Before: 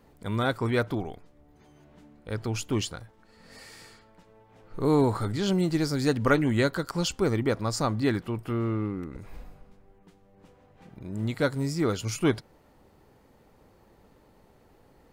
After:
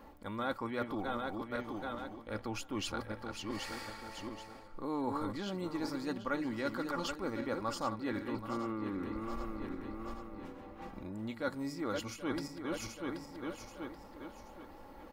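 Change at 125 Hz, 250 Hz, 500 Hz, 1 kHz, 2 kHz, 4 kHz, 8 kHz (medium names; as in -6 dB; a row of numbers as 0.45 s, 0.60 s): -17.0 dB, -9.0 dB, -10.5 dB, -5.0 dB, -8.0 dB, -8.0 dB, -10.5 dB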